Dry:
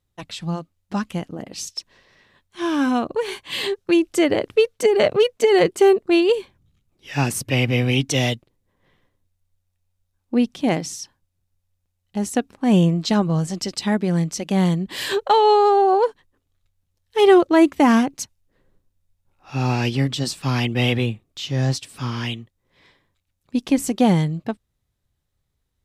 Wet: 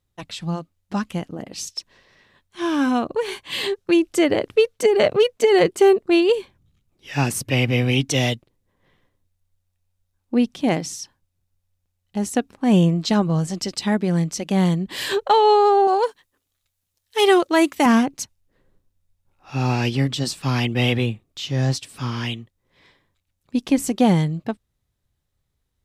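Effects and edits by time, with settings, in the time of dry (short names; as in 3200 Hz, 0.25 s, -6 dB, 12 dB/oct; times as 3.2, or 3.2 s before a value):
15.87–17.86 tilt +2.5 dB/oct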